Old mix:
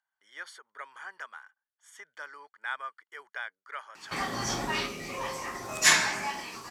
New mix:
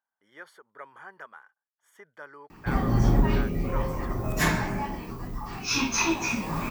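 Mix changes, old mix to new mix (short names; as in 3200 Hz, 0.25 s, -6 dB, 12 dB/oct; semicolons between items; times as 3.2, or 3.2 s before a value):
background: entry -1.45 s; master: remove weighting filter ITU-R 468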